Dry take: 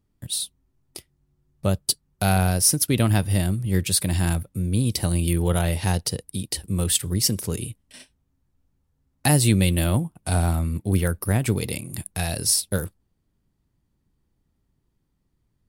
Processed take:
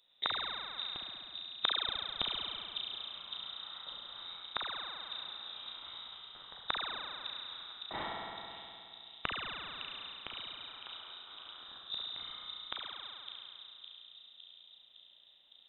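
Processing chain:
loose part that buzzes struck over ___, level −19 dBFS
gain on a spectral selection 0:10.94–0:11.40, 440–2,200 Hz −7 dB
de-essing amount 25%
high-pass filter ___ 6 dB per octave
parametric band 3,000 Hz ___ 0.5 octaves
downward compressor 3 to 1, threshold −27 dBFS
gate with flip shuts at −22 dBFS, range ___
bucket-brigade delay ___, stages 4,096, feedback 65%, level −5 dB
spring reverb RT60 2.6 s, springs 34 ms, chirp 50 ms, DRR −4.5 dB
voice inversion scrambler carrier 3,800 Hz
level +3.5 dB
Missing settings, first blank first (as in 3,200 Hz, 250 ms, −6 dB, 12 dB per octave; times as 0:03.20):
−29 dBFS, 180 Hz, +8 dB, −30 dB, 559 ms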